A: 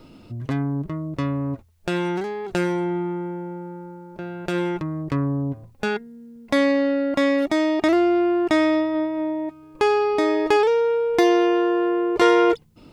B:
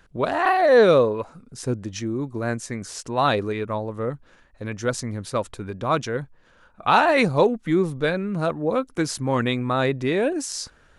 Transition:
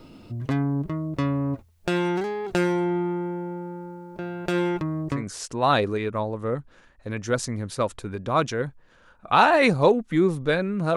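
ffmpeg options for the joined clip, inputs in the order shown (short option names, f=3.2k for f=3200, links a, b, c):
-filter_complex "[0:a]apad=whole_dur=10.96,atrim=end=10.96,atrim=end=5.25,asetpts=PTS-STARTPTS[a];[1:a]atrim=start=2.64:end=8.51,asetpts=PTS-STARTPTS[b];[a][b]acrossfade=d=0.16:c1=tri:c2=tri"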